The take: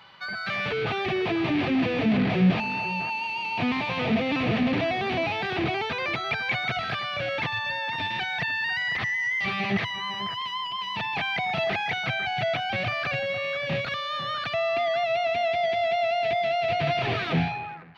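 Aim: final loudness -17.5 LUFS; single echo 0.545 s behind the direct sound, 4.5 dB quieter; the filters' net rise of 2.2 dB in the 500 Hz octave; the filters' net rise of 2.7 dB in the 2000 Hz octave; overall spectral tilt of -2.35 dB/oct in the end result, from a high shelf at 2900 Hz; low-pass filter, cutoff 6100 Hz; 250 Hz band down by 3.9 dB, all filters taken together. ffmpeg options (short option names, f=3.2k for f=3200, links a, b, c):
-af "lowpass=6.1k,equalizer=f=250:t=o:g=-6.5,equalizer=f=500:t=o:g=4.5,equalizer=f=2k:t=o:g=4.5,highshelf=f=2.9k:g=-3.5,aecho=1:1:545:0.596,volume=6.5dB"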